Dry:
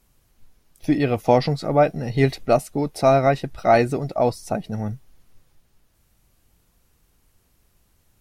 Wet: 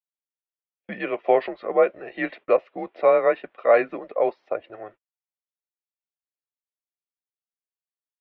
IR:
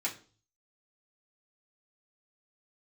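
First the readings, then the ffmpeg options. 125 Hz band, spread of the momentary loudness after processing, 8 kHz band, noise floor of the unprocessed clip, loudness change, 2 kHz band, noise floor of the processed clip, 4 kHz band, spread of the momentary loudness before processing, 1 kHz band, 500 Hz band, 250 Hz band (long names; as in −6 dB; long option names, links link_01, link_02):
below −25 dB, 13 LU, below −35 dB, −64 dBFS, −2.0 dB, −1.0 dB, below −85 dBFS, below −10 dB, 11 LU, −5.0 dB, −1.0 dB, −10.5 dB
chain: -af "highpass=frequency=510:width_type=q:width=0.5412,highpass=frequency=510:width_type=q:width=1.307,lowpass=frequency=3000:width_type=q:width=0.5176,lowpass=frequency=3000:width_type=q:width=0.7071,lowpass=frequency=3000:width_type=q:width=1.932,afreqshift=-100,agate=range=-41dB:threshold=-45dB:ratio=16:detection=peak"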